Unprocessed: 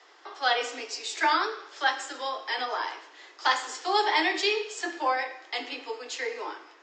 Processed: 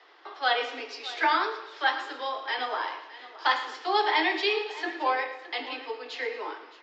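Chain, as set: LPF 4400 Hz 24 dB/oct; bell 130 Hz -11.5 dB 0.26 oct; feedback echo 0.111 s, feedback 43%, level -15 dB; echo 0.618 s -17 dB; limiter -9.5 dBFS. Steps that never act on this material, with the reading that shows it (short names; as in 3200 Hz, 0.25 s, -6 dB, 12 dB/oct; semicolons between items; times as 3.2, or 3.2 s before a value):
bell 130 Hz: input band starts at 240 Hz; limiter -9.5 dBFS: input peak -11.0 dBFS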